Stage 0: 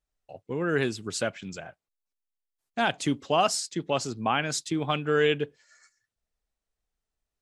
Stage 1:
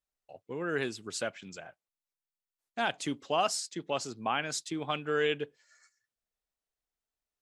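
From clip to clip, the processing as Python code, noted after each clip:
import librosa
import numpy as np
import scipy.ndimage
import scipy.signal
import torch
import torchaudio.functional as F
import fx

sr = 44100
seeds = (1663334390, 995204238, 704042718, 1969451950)

y = fx.low_shelf(x, sr, hz=190.0, db=-9.5)
y = y * 10.0 ** (-4.5 / 20.0)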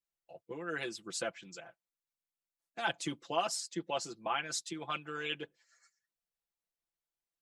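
y = fx.hpss(x, sr, part='harmonic', gain_db=-10)
y = y + 0.84 * np.pad(y, (int(5.9 * sr / 1000.0), 0))[:len(y)]
y = y * 10.0 ** (-3.5 / 20.0)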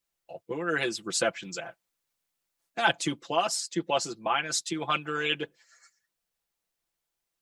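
y = fx.rider(x, sr, range_db=10, speed_s=0.5)
y = y * 10.0 ** (8.5 / 20.0)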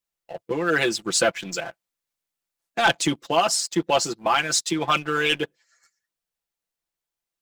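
y = fx.leveller(x, sr, passes=2)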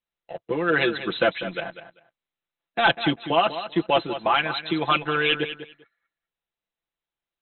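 y = fx.brickwall_lowpass(x, sr, high_hz=4100.0)
y = fx.echo_feedback(y, sr, ms=196, feedback_pct=17, wet_db=-12)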